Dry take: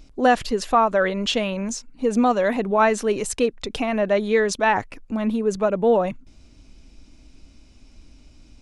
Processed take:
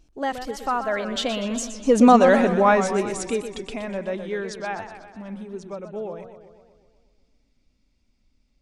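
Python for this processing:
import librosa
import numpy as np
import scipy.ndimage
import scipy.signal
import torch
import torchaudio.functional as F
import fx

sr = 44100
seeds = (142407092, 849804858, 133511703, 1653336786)

y = fx.doppler_pass(x, sr, speed_mps=28, closest_m=10.0, pass_at_s=2.11)
y = fx.echo_warbled(y, sr, ms=124, feedback_pct=61, rate_hz=2.8, cents=157, wet_db=-10)
y = y * librosa.db_to_amplitude(5.5)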